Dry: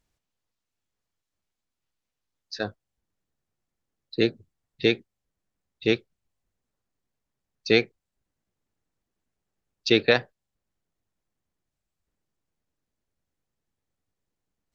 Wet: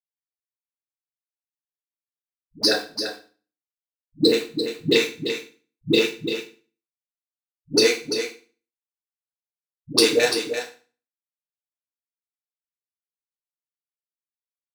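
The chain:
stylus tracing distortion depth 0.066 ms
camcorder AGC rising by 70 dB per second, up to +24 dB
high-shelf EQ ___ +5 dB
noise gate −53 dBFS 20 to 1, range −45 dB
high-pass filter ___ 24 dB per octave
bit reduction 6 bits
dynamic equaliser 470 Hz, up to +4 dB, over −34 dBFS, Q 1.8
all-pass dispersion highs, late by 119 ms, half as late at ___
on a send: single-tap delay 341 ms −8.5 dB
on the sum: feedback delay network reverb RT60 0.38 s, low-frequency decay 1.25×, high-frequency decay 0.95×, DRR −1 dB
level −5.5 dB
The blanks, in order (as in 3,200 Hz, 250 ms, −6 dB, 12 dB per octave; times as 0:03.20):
3,800 Hz, 170 Hz, 370 Hz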